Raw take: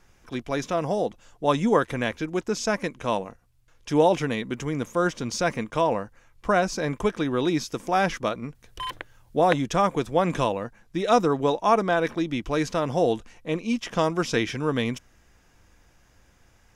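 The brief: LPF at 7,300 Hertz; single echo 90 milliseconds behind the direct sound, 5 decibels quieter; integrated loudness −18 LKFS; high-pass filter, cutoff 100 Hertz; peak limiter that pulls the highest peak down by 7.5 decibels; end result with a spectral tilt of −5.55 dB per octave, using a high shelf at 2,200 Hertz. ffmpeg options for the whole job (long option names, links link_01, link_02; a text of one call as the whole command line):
ffmpeg -i in.wav -af "highpass=100,lowpass=7300,highshelf=frequency=2200:gain=-7,alimiter=limit=-14.5dB:level=0:latency=1,aecho=1:1:90:0.562,volume=9dB" out.wav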